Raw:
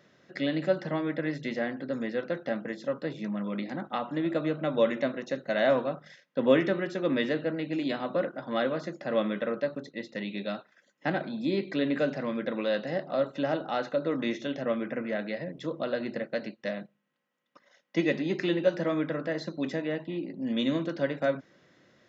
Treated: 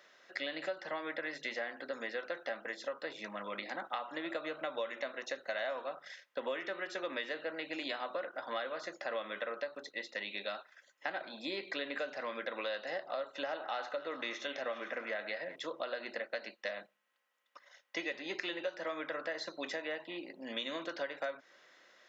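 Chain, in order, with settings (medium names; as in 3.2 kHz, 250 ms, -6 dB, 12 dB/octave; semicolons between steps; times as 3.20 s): high-pass 730 Hz 12 dB/octave; compression 6:1, threshold -38 dBFS, peak gain reduction 14.5 dB; 13.37–15.56 s: repeats whose band climbs or falls 103 ms, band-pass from 960 Hz, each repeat 0.7 oct, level -8 dB; trim +3 dB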